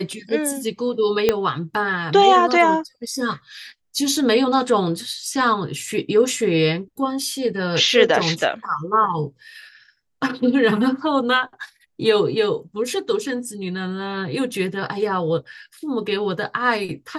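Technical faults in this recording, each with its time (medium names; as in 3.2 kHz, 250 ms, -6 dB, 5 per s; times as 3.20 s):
1.29 s: pop -3 dBFS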